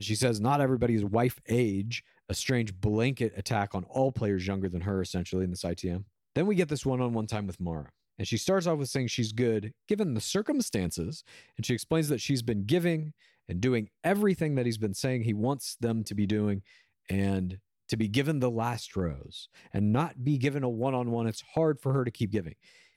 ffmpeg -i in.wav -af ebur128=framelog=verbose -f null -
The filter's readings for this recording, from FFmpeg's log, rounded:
Integrated loudness:
  I:         -29.9 LUFS
  Threshold: -40.2 LUFS
Loudness range:
  LRA:         2.2 LU
  Threshold: -50.4 LUFS
  LRA low:   -31.4 LUFS
  LRA high:  -29.2 LUFS